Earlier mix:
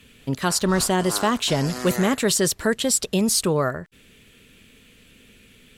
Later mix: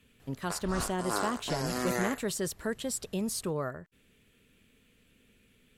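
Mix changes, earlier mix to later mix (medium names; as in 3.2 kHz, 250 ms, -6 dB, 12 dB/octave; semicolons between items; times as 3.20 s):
speech -11.5 dB; master: add peaking EQ 4.6 kHz -4.5 dB 2.2 oct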